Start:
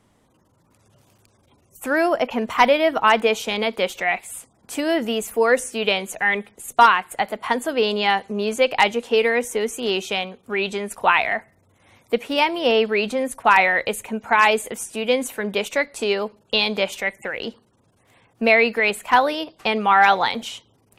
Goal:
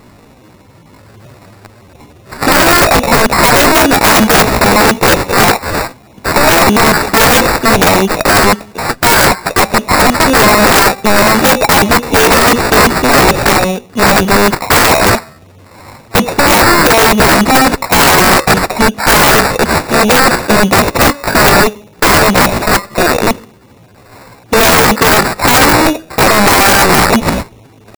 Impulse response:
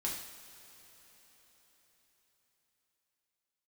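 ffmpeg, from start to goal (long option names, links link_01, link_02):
-af "acrusher=samples=14:mix=1:aa=0.000001,apsyclip=18.5dB,aeval=exprs='(mod(1.58*val(0)+1,2)-1)/1.58':channel_layout=same,atempo=0.75,volume=2.5dB"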